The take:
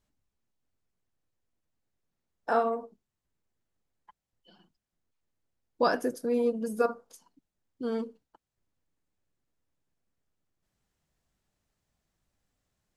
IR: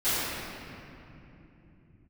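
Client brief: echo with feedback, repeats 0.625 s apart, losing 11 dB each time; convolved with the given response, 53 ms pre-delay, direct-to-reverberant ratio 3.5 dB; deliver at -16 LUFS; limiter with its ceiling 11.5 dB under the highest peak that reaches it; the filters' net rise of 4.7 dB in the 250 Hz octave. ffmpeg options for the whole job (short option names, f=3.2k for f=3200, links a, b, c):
-filter_complex "[0:a]equalizer=f=250:t=o:g=5,alimiter=limit=-23.5dB:level=0:latency=1,aecho=1:1:625|1250|1875:0.282|0.0789|0.0221,asplit=2[a][b];[1:a]atrim=start_sample=2205,adelay=53[c];[b][c]afir=irnorm=-1:irlink=0,volume=-17.5dB[d];[a][d]amix=inputs=2:normalize=0,volume=18dB"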